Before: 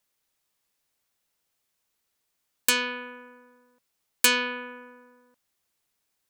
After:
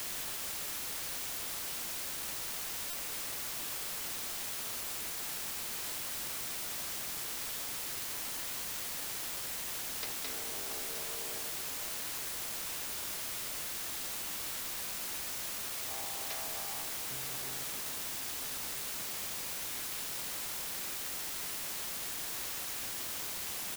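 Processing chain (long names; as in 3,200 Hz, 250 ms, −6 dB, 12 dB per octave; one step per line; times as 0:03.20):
auto-filter high-pass saw up 0.88 Hz 450–4,600 Hz
granular cloud
on a send: repeating echo 245 ms, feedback 37%, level −21.5 dB
on the sum: change of speed 0.265×
downward compressor, threshold −31 dBFS, peak gain reduction 16.5 dB
first-order pre-emphasis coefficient 0.8
bit-depth reduction 6 bits, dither triangular
buffer that repeats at 0:02.90, samples 128, times 10
level −3 dB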